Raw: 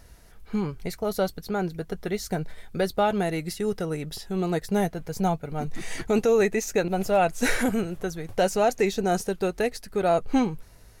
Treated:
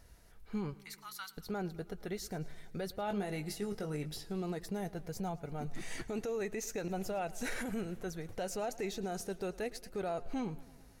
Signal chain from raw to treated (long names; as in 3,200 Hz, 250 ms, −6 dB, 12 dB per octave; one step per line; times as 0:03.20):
0:00.74–0:01.37: Butterworth high-pass 1,000 Hz 48 dB per octave
brickwall limiter −20.5 dBFS, peak gain reduction 8.5 dB
0:03.05–0:04.20: double-tracking delay 20 ms −7 dB
feedback echo with a swinging delay time 109 ms, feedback 68%, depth 70 cents, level −20.5 dB
level −8.5 dB